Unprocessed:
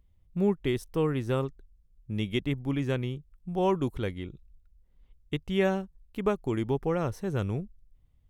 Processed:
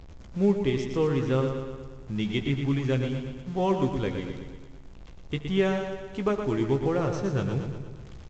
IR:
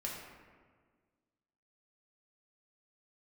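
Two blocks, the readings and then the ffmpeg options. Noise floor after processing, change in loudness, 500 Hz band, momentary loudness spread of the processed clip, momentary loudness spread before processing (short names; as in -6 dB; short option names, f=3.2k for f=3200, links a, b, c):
-45 dBFS, +2.5 dB, +2.5 dB, 13 LU, 10 LU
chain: -filter_complex "[0:a]aeval=exprs='val(0)+0.5*0.00891*sgn(val(0))':c=same,asplit=2[a][b];[b]adelay=15,volume=-8dB[c];[a][c]amix=inputs=2:normalize=0,aecho=1:1:117|234|351|468|585|702|819:0.447|0.25|0.14|0.0784|0.0439|0.0246|0.0138,asplit=2[d][e];[1:a]atrim=start_sample=2205,adelay=75[f];[e][f]afir=irnorm=-1:irlink=0,volume=-15dB[g];[d][g]amix=inputs=2:normalize=0" -ar 16000 -c:a pcm_mulaw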